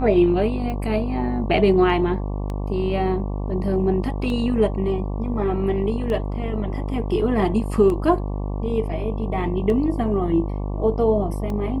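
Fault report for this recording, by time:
buzz 50 Hz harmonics 23 -26 dBFS
tick 33 1/3 rpm -18 dBFS

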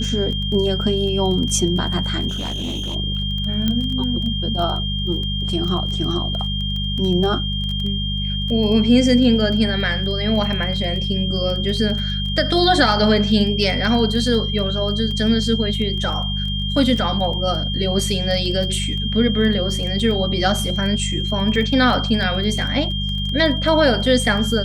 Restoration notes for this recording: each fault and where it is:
crackle 13 per s -25 dBFS
hum 50 Hz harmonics 4 -24 dBFS
whine 3.2 kHz -25 dBFS
2.28–2.96 s: clipped -22 dBFS
3.68 s: pop -8 dBFS

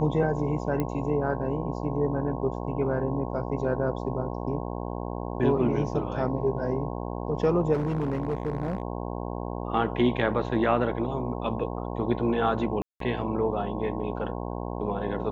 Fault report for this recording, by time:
buzz 60 Hz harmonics 18 -33 dBFS
0.80 s: pop -16 dBFS
7.73–8.82 s: clipped -23 dBFS
12.82–13.00 s: dropout 183 ms

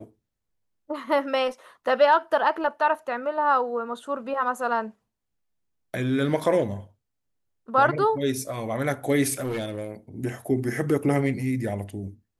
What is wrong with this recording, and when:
9.33–9.91 s: clipped -25 dBFS

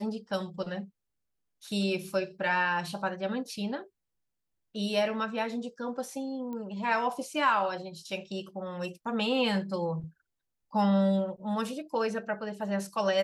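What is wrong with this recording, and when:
6.53 s: pop -28 dBFS

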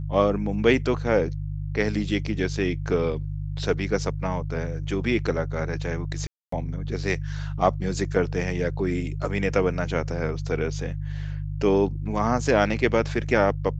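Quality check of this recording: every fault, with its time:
hum 50 Hz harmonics 3 -30 dBFS
6.27–6.52 s: dropout 254 ms

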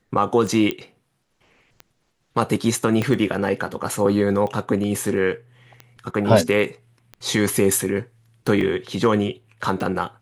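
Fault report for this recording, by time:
tick 45 rpm
0.71 s: pop -10 dBFS
3.02 s: pop -10 dBFS
8.61 s: dropout 2 ms

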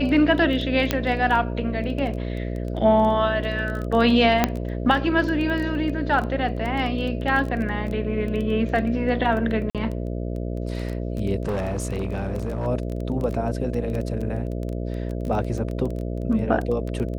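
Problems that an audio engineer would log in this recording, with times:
buzz 60 Hz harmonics 11 -28 dBFS
crackle 14 per s -27 dBFS
0.91 s: pop -6 dBFS
4.44 s: pop -3 dBFS
9.70–9.75 s: dropout 47 ms
11.45–12.67 s: clipped -21.5 dBFS

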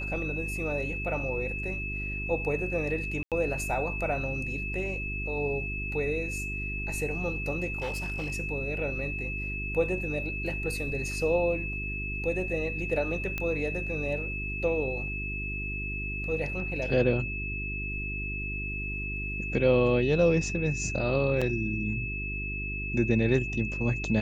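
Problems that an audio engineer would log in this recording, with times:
hum 50 Hz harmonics 8 -36 dBFS
whine 2.6 kHz -34 dBFS
3.23–3.32 s: dropout 87 ms
7.78–8.30 s: clipped -28 dBFS
13.38 s: pop -17 dBFS
21.41–21.42 s: dropout 5.7 ms

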